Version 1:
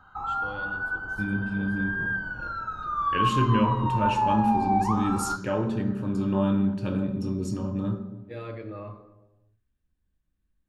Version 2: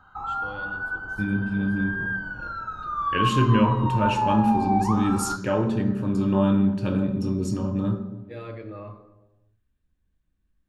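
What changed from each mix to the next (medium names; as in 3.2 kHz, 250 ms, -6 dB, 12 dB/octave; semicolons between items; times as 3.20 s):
second voice +3.5 dB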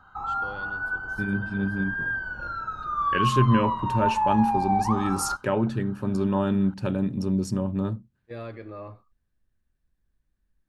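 reverb: off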